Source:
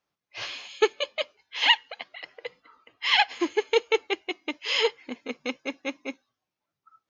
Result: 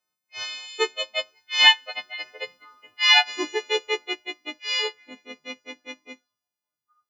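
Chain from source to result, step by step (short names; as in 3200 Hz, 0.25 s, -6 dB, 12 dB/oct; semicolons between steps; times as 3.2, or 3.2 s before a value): frequency quantiser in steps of 3 st; Doppler pass-by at 2.29, 6 m/s, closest 5.9 m; gain +2 dB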